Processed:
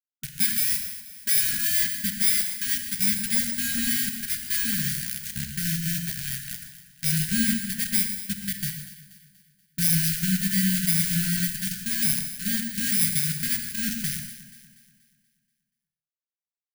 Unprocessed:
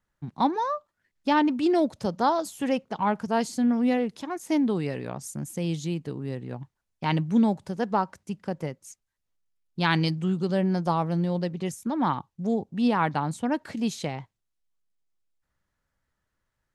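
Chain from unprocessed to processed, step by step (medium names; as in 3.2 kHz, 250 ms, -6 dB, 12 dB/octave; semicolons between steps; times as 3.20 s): bit-reversed sample order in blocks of 32 samples; Bessel high-pass 180 Hz, order 8; tone controls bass +6 dB, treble +4 dB; hum notches 60/120/180/240/300/360/420 Hz; in parallel at -2 dB: compression, threshold -29 dBFS, peak gain reduction 14 dB; on the sum: added noise pink -41 dBFS; bit crusher 4-bit; brick-wall FIR band-stop 230–1400 Hz; on a send: echo whose repeats swap between lows and highs 120 ms, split 1.5 kHz, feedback 67%, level -11 dB; on the sum: gated-style reverb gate 190 ms flat, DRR 5.5 dB; trim -3.5 dB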